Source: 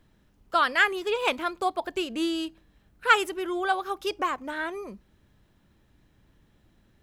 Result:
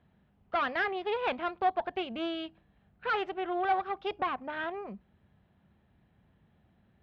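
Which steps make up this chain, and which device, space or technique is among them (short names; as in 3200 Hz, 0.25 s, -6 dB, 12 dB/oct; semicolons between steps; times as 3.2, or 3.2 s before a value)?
guitar amplifier (tube stage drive 26 dB, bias 0.75; tone controls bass +8 dB, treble -8 dB; speaker cabinet 99–3800 Hz, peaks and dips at 120 Hz -6 dB, 300 Hz -8 dB, 730 Hz +7 dB)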